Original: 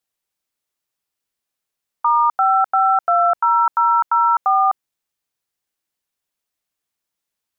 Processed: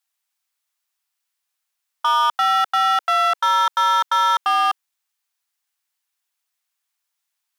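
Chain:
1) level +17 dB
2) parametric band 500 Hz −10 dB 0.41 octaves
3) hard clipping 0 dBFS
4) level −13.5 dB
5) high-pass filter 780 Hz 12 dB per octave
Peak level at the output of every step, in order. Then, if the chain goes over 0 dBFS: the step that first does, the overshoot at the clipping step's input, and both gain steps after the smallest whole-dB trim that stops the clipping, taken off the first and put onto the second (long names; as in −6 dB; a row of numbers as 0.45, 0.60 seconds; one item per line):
+8.5, +8.0, 0.0, −13.5, −9.0 dBFS
step 1, 8.0 dB
step 1 +9 dB, step 4 −5.5 dB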